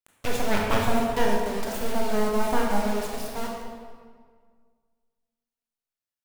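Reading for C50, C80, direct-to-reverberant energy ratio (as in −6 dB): 1.0 dB, 2.5 dB, −1.5 dB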